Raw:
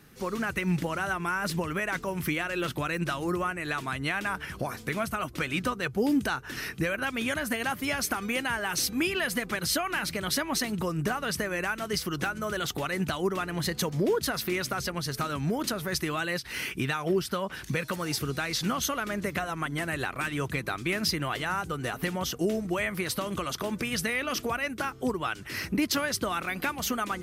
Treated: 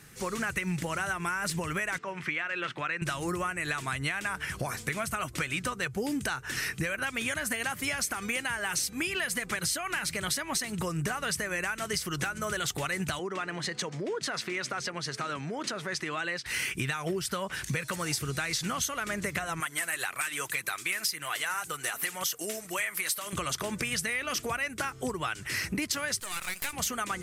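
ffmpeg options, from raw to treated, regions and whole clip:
-filter_complex "[0:a]asettb=1/sr,asplit=3[s0][s1][s2];[s0]atrim=end=1.984[s3];[s1]atrim=start=1.98:end=3.02,asetpts=PTS-STARTPTS,afade=t=in:d=0.004:c=qsin,afade=t=out:st=1.036:d=0.004:c=qsin,highpass=170,lowpass=2000,tiltshelf=f=1200:g=-6.5[s4];[s2]atrim=start=3.016[s5];[s3][s4]acrossfade=d=0.004:c1=hsin:c2=qsin[s6];[s6][s5]acrossfade=d=0.004:c1=qsin:c2=hsin,asettb=1/sr,asplit=3[s7][s8][s9];[s7]atrim=end=13.194[s10];[s8]atrim=start=13.19:end=16.46,asetpts=PTS-STARTPTS,afade=t=in:d=0.004:c=qsin,afade=t=out:st=3.266:d=0.004:c=qsin,aemphasis=mode=reproduction:type=cd,acompressor=threshold=0.0355:ratio=3:attack=3.2:release=140:knee=1:detection=peak,highpass=220,lowpass=7200[s11];[s9]atrim=start=16.456[s12];[s10][s11]acrossfade=d=0.004:c1=hsin:c2=qsin[s13];[s13][s12]acrossfade=d=0.004:c1=qsin:c2=hsin,asettb=1/sr,asplit=3[s14][s15][s16];[s14]atrim=end=19.604[s17];[s15]atrim=start=19.6:end=23.33,asetpts=PTS-STARTPTS,afade=t=in:d=0.004:c=qsin,afade=t=out:st=3.726:d=0.004:c=qsin,equalizer=f=13000:t=o:w=0.77:g=9.5,aphaser=in_gain=1:out_gain=1:delay=4.6:decay=0.35:speed=1.9:type=triangular,highpass=f=940:p=1[s18];[s16]atrim=start=23.326[s19];[s17][s18]acrossfade=d=0.004:c1=hsin:c2=qsin[s20];[s20][s19]acrossfade=d=0.004:c1=qsin:c2=hsin,asettb=1/sr,asplit=3[s21][s22][s23];[s21]atrim=end=26.204[s24];[s22]atrim=start=26.2:end=26.73,asetpts=PTS-STARTPTS,afade=t=in:d=0.004:c=qsin,afade=t=out:st=0.526:d=0.004:c=qsin,highpass=f=1400:p=1,highshelf=f=6300:g=11.5,aeval=exprs='max(val(0),0)':c=same[s25];[s23]atrim=start=26.726[s26];[s24][s25]acrossfade=d=0.004:c1=hsin:c2=qsin[s27];[s27][s26]acrossfade=d=0.004:c1=qsin:c2=hsin,equalizer=f=125:t=o:w=1:g=4,equalizer=f=250:t=o:w=1:g=-4,equalizer=f=2000:t=o:w=1:g=5,equalizer=f=8000:t=o:w=1:g=11,acompressor=threshold=0.0398:ratio=6"

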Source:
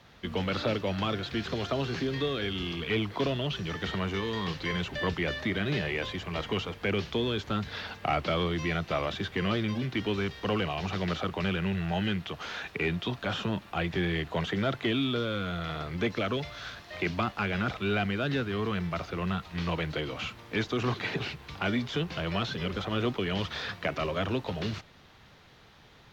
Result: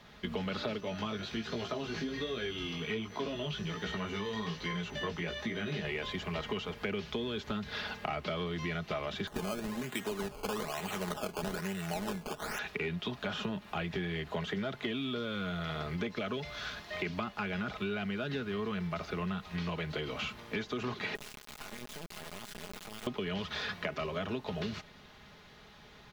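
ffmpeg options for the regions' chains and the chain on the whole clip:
-filter_complex "[0:a]asettb=1/sr,asplit=3[s0][s1][s2];[s0]atrim=end=0.804[s3];[s1]atrim=start=0.8:end=5.85,asetpts=PTS-STARTPTS,afade=t=in:d=0.004:c=qsin,afade=t=out:st=5.046:d=0.004:c=qsin,flanger=delay=17:depth=2.4:speed=1.3,highpass=41,aeval=exprs='val(0)+0.00112*sin(2*PI*6000*n/s)':c=same[s4];[s2]atrim=start=5.846[s5];[s3][s4]acrossfade=d=0.004:c1=hsin:c2=qsin[s6];[s6][s5]acrossfade=d=0.004:c1=qsin:c2=hsin,asettb=1/sr,asplit=3[s7][s8][s9];[s7]atrim=end=9.274[s10];[s8]atrim=start=9.27:end=12.59,asetpts=PTS-STARTPTS,afade=t=in:d=0.004:c=qsin,afade=t=out:st=3.316:d=0.004:c=qsin,highpass=f=340:p=1,acrusher=samples=16:mix=1:aa=0.000001:lfo=1:lforange=16:lforate=1.1[s11];[s9]atrim=start=12.586[s12];[s10][s11]acrossfade=d=0.004:c1=hsin:c2=qsin[s13];[s13][s12]acrossfade=d=0.004:c1=qsin:c2=hsin,asettb=1/sr,asplit=3[s14][s15][s16];[s14]atrim=end=21.154[s17];[s15]atrim=start=21.15:end=23.07,asetpts=PTS-STARTPTS,afade=t=in:d=0.004:c=qsin,afade=t=out:st=1.916:d=0.004:c=qsin,bandreject=f=50:t=h:w=6,bandreject=f=100:t=h:w=6,bandreject=f=150:t=h:w=6,bandreject=f=200:t=h:w=6,bandreject=f=250:t=h:w=6,acompressor=threshold=0.00891:ratio=10:attack=3.2:release=140:knee=1:detection=peak,acrusher=bits=4:dc=4:mix=0:aa=0.000001[s18];[s16]atrim=start=23.066[s19];[s17][s18]acrossfade=d=0.004:c1=hsin:c2=qsin[s20];[s20][s19]acrossfade=d=0.004:c1=qsin:c2=hsin,aecho=1:1:4.8:0.46,acompressor=threshold=0.0224:ratio=5"

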